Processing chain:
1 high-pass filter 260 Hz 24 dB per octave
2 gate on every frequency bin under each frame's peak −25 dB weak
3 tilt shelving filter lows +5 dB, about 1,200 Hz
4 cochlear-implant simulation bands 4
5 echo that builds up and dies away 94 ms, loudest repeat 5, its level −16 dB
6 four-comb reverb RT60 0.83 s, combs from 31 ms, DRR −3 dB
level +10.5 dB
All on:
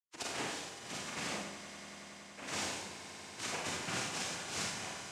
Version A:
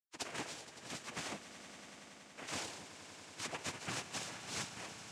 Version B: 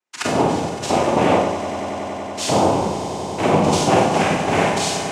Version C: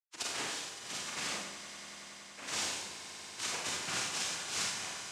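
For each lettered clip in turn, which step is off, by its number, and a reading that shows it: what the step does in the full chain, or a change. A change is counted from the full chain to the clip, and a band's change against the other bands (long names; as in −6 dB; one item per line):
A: 6, echo-to-direct ratio 4.5 dB to −6.5 dB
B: 2, 8 kHz band −13.5 dB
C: 3, 8 kHz band +6.0 dB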